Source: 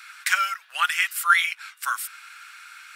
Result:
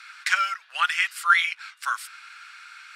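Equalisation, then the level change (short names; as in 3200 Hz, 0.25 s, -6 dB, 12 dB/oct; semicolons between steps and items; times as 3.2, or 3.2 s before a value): air absorption 58 m; bell 4600 Hz +3.5 dB 0.45 oct; 0.0 dB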